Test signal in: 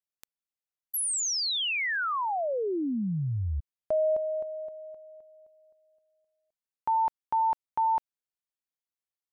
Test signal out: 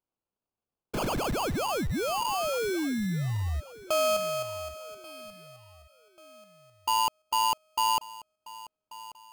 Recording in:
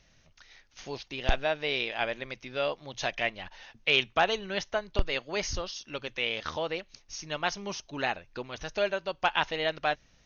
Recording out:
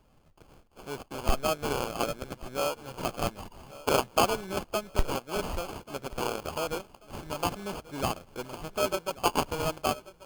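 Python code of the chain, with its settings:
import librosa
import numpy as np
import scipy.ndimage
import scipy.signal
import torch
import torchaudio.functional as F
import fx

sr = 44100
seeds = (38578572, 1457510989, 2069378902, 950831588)

p1 = fx.sample_hold(x, sr, seeds[0], rate_hz=1900.0, jitter_pct=0)
y = p1 + fx.echo_feedback(p1, sr, ms=1137, feedback_pct=38, wet_db=-18.5, dry=0)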